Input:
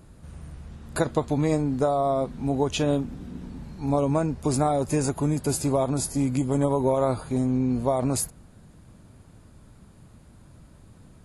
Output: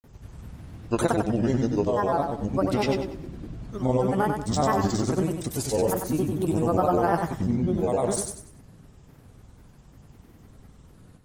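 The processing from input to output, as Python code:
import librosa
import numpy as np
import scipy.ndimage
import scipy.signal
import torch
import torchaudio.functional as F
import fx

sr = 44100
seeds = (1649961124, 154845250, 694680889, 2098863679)

y = fx.granulator(x, sr, seeds[0], grain_ms=100.0, per_s=20.0, spray_ms=100.0, spread_st=7)
y = fx.echo_feedback(y, sr, ms=95, feedback_pct=33, wet_db=-5.5)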